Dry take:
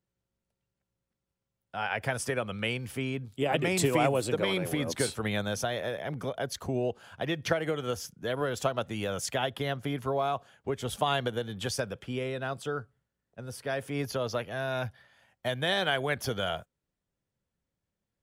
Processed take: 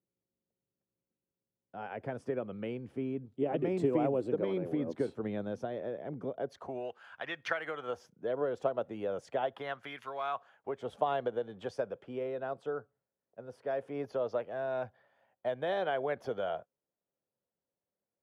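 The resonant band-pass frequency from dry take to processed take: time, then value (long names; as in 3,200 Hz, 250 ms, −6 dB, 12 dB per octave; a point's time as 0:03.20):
resonant band-pass, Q 1.2
0:06.35 330 Hz
0:06.90 1,500 Hz
0:07.62 1,500 Hz
0:08.14 490 Hz
0:09.33 490 Hz
0:10.03 2,300 Hz
0:10.88 560 Hz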